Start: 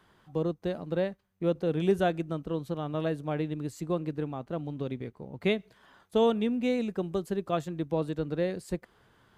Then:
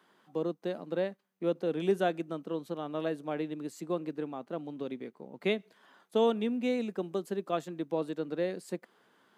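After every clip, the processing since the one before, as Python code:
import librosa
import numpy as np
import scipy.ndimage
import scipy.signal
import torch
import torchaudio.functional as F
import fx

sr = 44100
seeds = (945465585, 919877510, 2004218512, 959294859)

y = scipy.signal.sosfilt(scipy.signal.butter(4, 200.0, 'highpass', fs=sr, output='sos'), x)
y = y * 10.0 ** (-2.0 / 20.0)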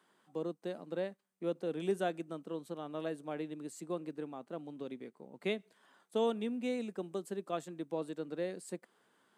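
y = fx.peak_eq(x, sr, hz=8500.0, db=9.5, octaves=0.52)
y = y * 10.0 ** (-5.5 / 20.0)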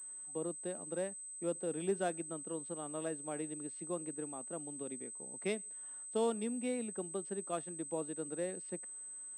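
y = fx.pwm(x, sr, carrier_hz=8200.0)
y = y * 10.0 ** (-1.5 / 20.0)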